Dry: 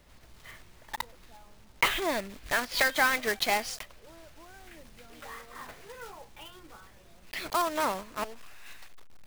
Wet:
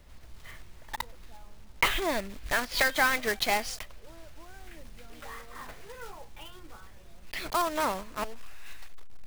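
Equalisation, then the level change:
low-shelf EQ 75 Hz +10 dB
0.0 dB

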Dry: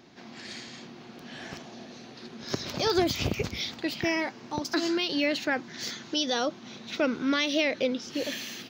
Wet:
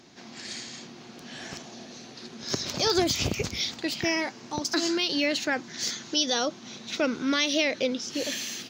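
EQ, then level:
parametric band 7,400 Hz +9.5 dB 1.3 octaves
0.0 dB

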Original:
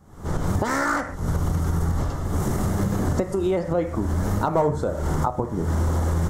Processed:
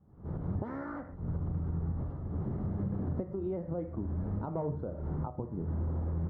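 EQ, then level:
resonant band-pass 160 Hz, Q 1.2
high-frequency loss of the air 270 metres
parametric band 170 Hz −9 dB 2.2 octaves
0.0 dB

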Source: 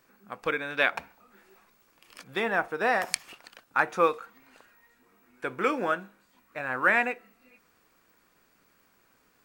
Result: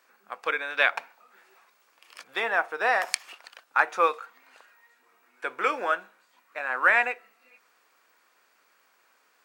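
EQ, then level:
high-pass filter 600 Hz 12 dB per octave
high-shelf EQ 10,000 Hz −7.5 dB
+3.0 dB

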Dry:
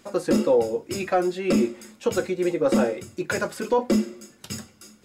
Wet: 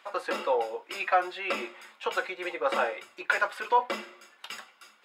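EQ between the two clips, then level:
high-pass with resonance 930 Hz, resonance Q 1.5
high shelf with overshoot 4,500 Hz −10.5 dB, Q 1.5
0.0 dB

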